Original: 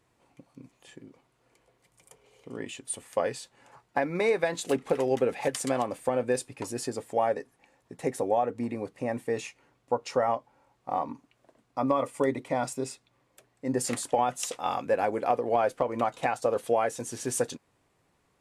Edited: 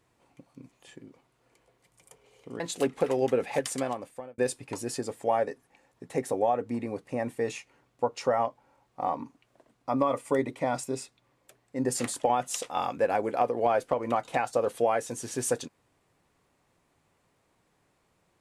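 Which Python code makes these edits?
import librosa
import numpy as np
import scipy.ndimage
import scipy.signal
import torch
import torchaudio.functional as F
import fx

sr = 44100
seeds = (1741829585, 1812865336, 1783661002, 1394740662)

y = fx.edit(x, sr, fx.cut(start_s=2.6, length_s=1.89),
    fx.fade_out_span(start_s=5.52, length_s=0.75), tone=tone)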